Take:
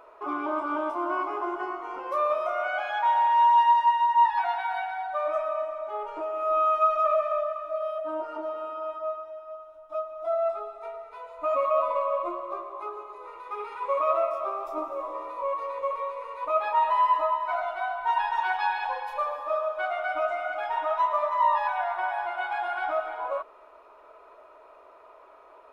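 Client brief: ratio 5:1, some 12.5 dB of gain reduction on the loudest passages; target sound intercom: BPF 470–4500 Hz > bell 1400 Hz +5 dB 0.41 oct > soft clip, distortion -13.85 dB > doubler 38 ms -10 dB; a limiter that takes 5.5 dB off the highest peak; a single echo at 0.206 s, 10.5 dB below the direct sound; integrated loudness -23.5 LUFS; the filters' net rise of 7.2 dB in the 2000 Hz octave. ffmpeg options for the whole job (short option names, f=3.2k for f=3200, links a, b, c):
-filter_complex "[0:a]equalizer=f=2k:t=o:g=6,acompressor=threshold=-30dB:ratio=5,alimiter=level_in=2.5dB:limit=-24dB:level=0:latency=1,volume=-2.5dB,highpass=470,lowpass=4.5k,equalizer=f=1.4k:t=o:w=0.41:g=5,aecho=1:1:206:0.299,asoftclip=threshold=-31.5dB,asplit=2[a][b];[b]adelay=38,volume=-10dB[c];[a][c]amix=inputs=2:normalize=0,volume=12dB"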